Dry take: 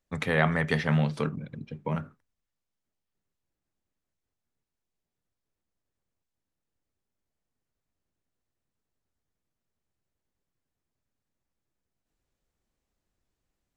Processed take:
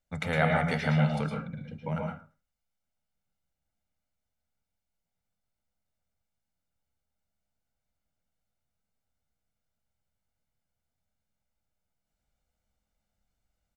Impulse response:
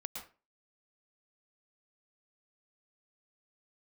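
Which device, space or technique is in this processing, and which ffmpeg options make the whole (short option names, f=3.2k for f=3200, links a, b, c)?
microphone above a desk: -filter_complex "[0:a]aecho=1:1:1.4:0.56[a];[1:a]atrim=start_sample=2205[b];[a][b]afir=irnorm=-1:irlink=0"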